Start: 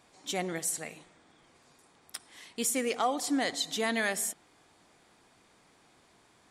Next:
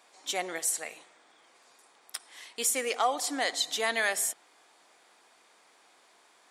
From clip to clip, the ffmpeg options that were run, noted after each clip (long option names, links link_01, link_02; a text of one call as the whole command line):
ffmpeg -i in.wav -af "highpass=510,volume=3dB" out.wav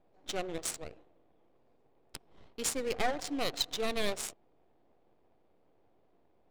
ffmpeg -i in.wav -filter_complex "[0:a]acrossover=split=760|2800[link_01][link_02][link_03];[link_02]aeval=exprs='abs(val(0))':channel_layout=same[link_04];[link_01][link_04][link_03]amix=inputs=3:normalize=0,adynamicsmooth=sensitivity=7:basefreq=900" out.wav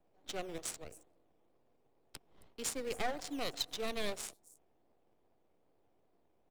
ffmpeg -i in.wav -filter_complex "[0:a]acrossover=split=340|480|6700[link_01][link_02][link_03][link_04];[link_01]acrusher=samples=13:mix=1:aa=0.000001:lfo=1:lforange=7.8:lforate=2.4[link_05];[link_04]aecho=1:1:269:0.2[link_06];[link_05][link_02][link_03][link_06]amix=inputs=4:normalize=0,volume=-5dB" out.wav